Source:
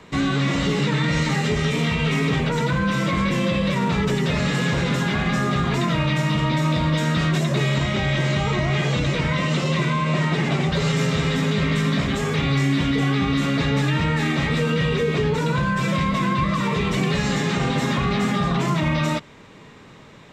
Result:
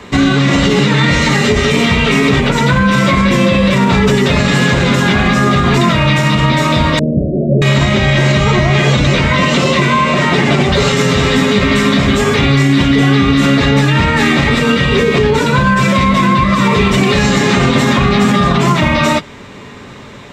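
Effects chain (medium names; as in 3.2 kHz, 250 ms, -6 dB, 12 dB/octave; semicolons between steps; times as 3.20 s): comb of notches 160 Hz; 6.99–7.62 s: steep low-pass 630 Hz 72 dB/octave; loudness maximiser +15 dB; trim -1 dB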